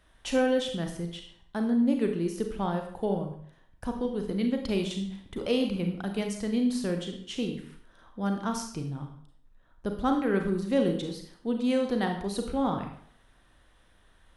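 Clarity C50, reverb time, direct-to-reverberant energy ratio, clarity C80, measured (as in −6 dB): 6.5 dB, 0.60 s, 4.0 dB, 10.0 dB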